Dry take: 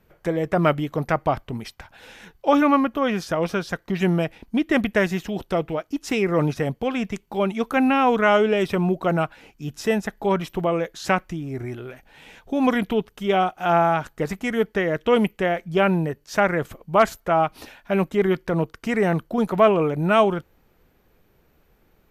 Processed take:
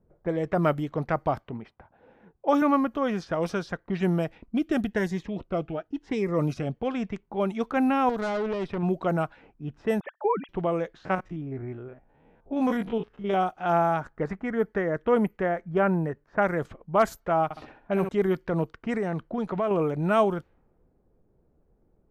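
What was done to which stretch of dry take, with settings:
1.37–2.62 s: high-pass 130 Hz 6 dB/octave
3.32–3.72 s: treble shelf 6 kHz +10 dB
4.40–6.77 s: Shepard-style phaser rising 1 Hz
8.09–8.83 s: valve stage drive 20 dB, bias 0.65
10.00–10.49 s: formants replaced by sine waves
11.05–13.34 s: spectrogram pixelated in time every 50 ms
14.00–16.42 s: resonant high shelf 2.3 kHz -7 dB, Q 1.5
17.44–18.09 s: flutter echo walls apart 11 m, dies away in 0.5 s
18.97–19.71 s: compression 2.5:1, threshold -21 dBFS
whole clip: level-controlled noise filter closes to 600 Hz, open at -17 dBFS; dynamic bell 2.7 kHz, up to -7 dB, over -39 dBFS, Q 1.2; trim -4 dB

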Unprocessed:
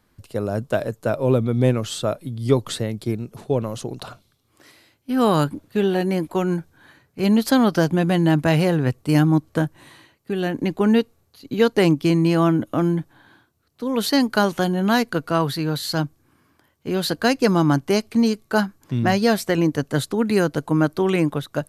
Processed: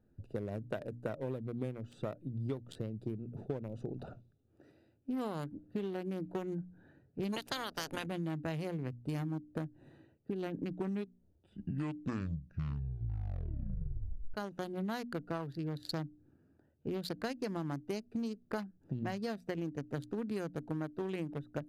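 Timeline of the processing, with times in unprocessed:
7.32–8.05 s: spectral peaks clipped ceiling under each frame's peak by 28 dB
10.57 s: tape stop 3.77 s
whole clip: local Wiener filter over 41 samples; hum notches 60/120/180/240/300 Hz; compression 12:1, threshold -31 dBFS; trim -3.5 dB

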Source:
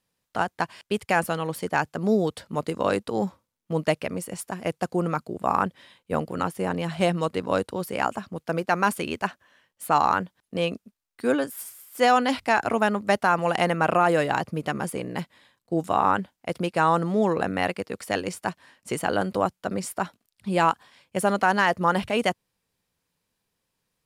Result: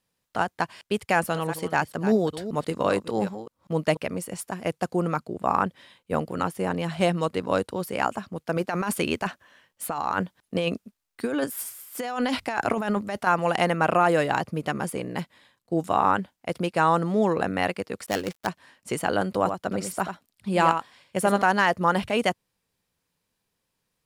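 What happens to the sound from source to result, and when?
1.15–3.97 s: chunks repeated in reverse 194 ms, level -11.5 dB
5.19–5.67 s: treble shelf 8 kHz -5.5 dB
8.56–13.27 s: compressor with a negative ratio -26 dBFS
18.06–18.47 s: dead-time distortion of 0.14 ms
19.37–21.42 s: delay 85 ms -7.5 dB

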